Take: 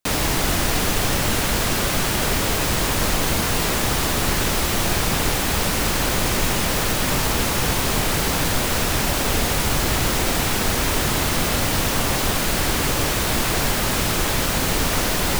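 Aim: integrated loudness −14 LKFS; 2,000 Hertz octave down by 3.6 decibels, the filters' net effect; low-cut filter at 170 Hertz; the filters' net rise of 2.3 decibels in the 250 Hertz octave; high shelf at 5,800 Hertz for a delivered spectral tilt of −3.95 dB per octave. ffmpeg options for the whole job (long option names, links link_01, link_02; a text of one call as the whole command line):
ffmpeg -i in.wav -af "highpass=170,equalizer=frequency=250:width_type=o:gain=4.5,equalizer=frequency=2000:width_type=o:gain=-3.5,highshelf=frequency=5800:gain=-9,volume=9dB" out.wav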